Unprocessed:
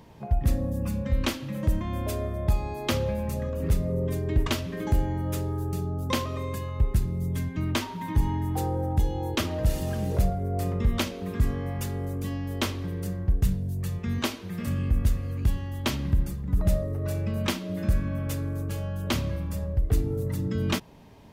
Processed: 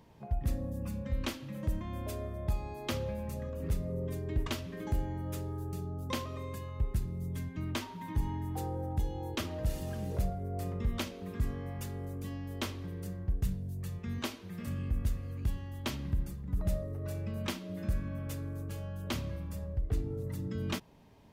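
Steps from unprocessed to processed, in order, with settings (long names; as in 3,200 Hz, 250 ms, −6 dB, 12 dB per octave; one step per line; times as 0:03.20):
0:19.77–0:20.24: high-shelf EQ 9,000 Hz −11 dB
level −8.5 dB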